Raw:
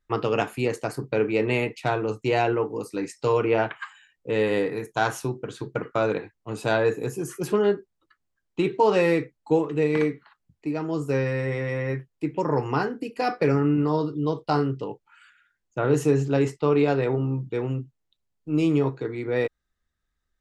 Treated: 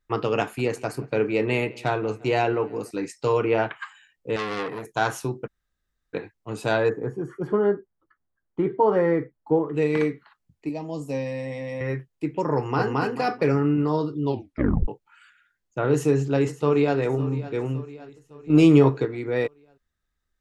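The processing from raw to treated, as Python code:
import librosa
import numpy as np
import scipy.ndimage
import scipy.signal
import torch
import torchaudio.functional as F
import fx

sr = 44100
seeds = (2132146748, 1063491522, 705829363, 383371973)

y = fx.echo_wet_lowpass(x, sr, ms=174, feedback_pct=55, hz=3500.0, wet_db=-22.0, at=(0.41, 2.91))
y = fx.transformer_sat(y, sr, knee_hz=2000.0, at=(4.36, 4.86))
y = fx.savgol(y, sr, points=41, at=(6.88, 9.73), fade=0.02)
y = fx.fixed_phaser(y, sr, hz=380.0, stages=6, at=(10.69, 11.81))
y = fx.echo_throw(y, sr, start_s=12.56, length_s=0.44, ms=220, feedback_pct=25, wet_db=-0.5)
y = fx.echo_throw(y, sr, start_s=15.92, length_s=1.05, ms=560, feedback_pct=55, wet_db=-15.5)
y = fx.edit(y, sr, fx.room_tone_fill(start_s=5.47, length_s=0.67, crossfade_s=0.02),
    fx.tape_stop(start_s=14.23, length_s=0.65),
    fx.clip_gain(start_s=18.5, length_s=0.55, db=7.0), tone=tone)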